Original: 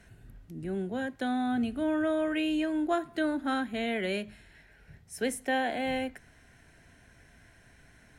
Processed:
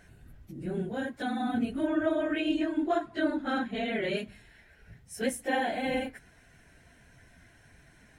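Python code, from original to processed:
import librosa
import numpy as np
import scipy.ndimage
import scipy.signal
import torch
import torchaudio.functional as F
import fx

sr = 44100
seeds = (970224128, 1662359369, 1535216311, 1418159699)

y = fx.phase_scramble(x, sr, seeds[0], window_ms=50)
y = fx.lowpass(y, sr, hz=6600.0, slope=12, at=(1.87, 4.17))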